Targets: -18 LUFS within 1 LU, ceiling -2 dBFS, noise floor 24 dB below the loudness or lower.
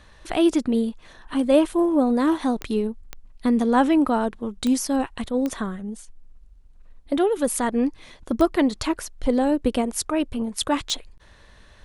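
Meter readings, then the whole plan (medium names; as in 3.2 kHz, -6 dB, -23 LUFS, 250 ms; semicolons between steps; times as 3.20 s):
clicks found 6; loudness -23.0 LUFS; peak level -6.0 dBFS; loudness target -18.0 LUFS
-> de-click; trim +5 dB; peak limiter -2 dBFS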